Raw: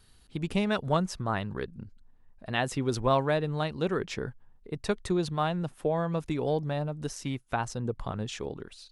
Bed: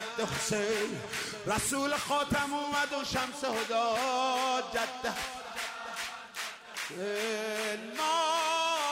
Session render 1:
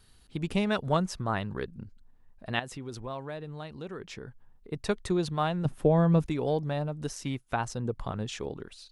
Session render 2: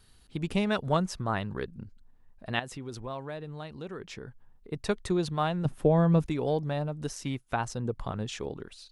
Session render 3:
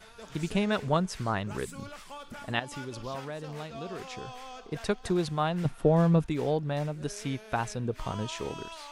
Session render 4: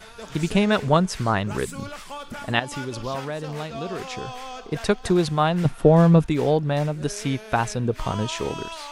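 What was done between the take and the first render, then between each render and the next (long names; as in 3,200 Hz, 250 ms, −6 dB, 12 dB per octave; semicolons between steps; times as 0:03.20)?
0:02.59–0:04.72: downward compressor 2 to 1, threshold −44 dBFS; 0:05.65–0:06.26: low-shelf EQ 360 Hz +11.5 dB
no processing that can be heard
mix in bed −14.5 dB
level +8 dB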